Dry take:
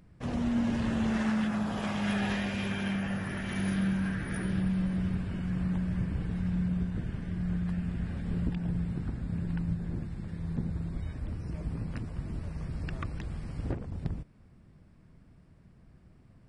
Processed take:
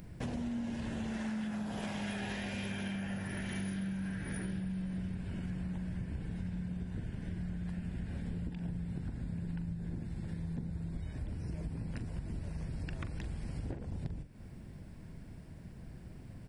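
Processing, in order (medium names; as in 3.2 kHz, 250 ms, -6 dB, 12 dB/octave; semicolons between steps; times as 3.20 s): peaking EQ 1.2 kHz -9.5 dB 0.23 oct; doubling 42 ms -11.5 dB; compression, threshold -45 dBFS, peak gain reduction 19 dB; treble shelf 8.4 kHz +8.5 dB; trim +8 dB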